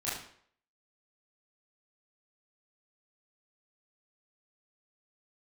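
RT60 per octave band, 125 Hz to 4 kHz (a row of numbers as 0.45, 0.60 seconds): 0.55, 0.55, 0.60, 0.60, 0.55, 0.50 seconds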